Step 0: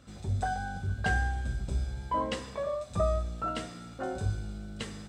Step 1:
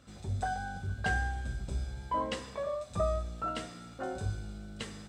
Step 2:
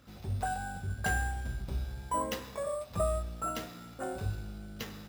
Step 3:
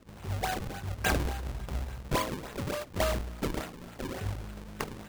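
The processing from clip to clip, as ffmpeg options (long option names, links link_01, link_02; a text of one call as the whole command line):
ffmpeg -i in.wav -af "lowshelf=frequency=360:gain=-2.5,volume=-1.5dB" out.wav
ffmpeg -i in.wav -af "acrusher=samples=5:mix=1:aa=0.000001" out.wav
ffmpeg -i in.wav -af "highshelf=frequency=3000:gain=12,acrusher=samples=38:mix=1:aa=0.000001:lfo=1:lforange=60.8:lforate=3.5" out.wav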